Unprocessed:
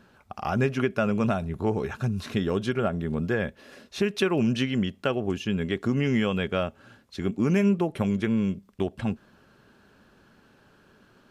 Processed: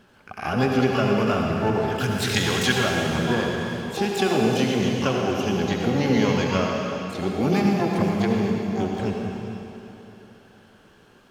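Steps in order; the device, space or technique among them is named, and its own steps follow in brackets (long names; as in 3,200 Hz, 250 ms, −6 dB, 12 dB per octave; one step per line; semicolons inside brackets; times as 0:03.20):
0:02.00–0:02.75: drawn EQ curve 100 Hz 0 dB, 920 Hz −5 dB, 1,400 Hz +12 dB
shimmer-style reverb (pitch-shifted copies added +12 semitones −6 dB; convolution reverb RT60 3.2 s, pre-delay 64 ms, DRR 0 dB)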